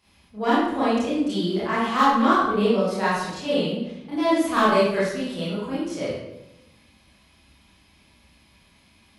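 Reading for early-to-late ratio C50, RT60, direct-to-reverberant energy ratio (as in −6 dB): −1.5 dB, 0.90 s, −10.5 dB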